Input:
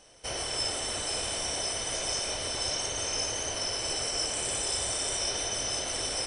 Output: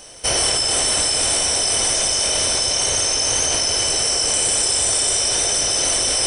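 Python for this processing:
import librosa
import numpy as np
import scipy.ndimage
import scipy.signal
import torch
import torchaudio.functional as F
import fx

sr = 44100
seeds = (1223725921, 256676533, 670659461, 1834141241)

p1 = fx.echo_split(x, sr, split_hz=2900.0, low_ms=230, high_ms=441, feedback_pct=52, wet_db=-7)
p2 = fx.over_compress(p1, sr, threshold_db=-34.0, ratio=-0.5)
p3 = p1 + (p2 * 10.0 ** (2.0 / 20.0))
p4 = fx.high_shelf(p3, sr, hz=7300.0, db=11.0)
y = p4 * 10.0 ** (3.5 / 20.0)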